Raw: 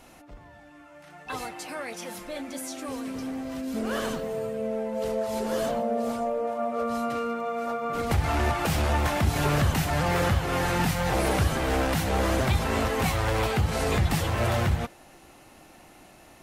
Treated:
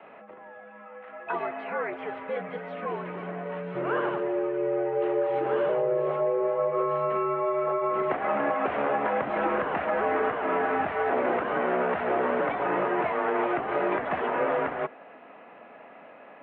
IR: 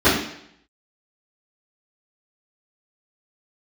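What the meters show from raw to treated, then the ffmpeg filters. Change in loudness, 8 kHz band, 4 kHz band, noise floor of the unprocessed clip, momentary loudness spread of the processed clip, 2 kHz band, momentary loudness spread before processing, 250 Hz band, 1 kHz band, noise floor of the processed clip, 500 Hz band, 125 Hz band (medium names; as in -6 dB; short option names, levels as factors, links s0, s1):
-0.5 dB, under -40 dB, under -10 dB, -52 dBFS, 9 LU, -0.5 dB, 11 LU, -3.0 dB, +2.0 dB, -49 dBFS, +3.5 dB, -17.0 dB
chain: -filter_complex "[0:a]acrossover=split=410 2400:gain=0.126 1 0.0708[s0][s1][s2];[s0][s1][s2]amix=inputs=3:normalize=0,highpass=f=250:t=q:w=0.5412,highpass=f=250:t=q:w=1.307,lowpass=f=3300:t=q:w=0.5176,lowpass=f=3300:t=q:w=0.7071,lowpass=f=3300:t=q:w=1.932,afreqshift=-85,acrossover=split=460|2000[s3][s4][s5];[s3]acompressor=threshold=0.0158:ratio=4[s6];[s4]acompressor=threshold=0.02:ratio=4[s7];[s5]acompressor=threshold=0.00224:ratio=4[s8];[s6][s7][s8]amix=inputs=3:normalize=0,volume=2.37"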